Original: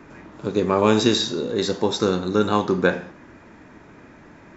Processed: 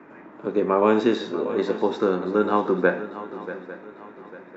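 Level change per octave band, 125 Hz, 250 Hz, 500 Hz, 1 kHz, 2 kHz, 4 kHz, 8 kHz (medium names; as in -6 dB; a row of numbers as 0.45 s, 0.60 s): -7.5 dB, -2.0 dB, 0.0 dB, 0.0 dB, -1.5 dB, -13.5 dB, no reading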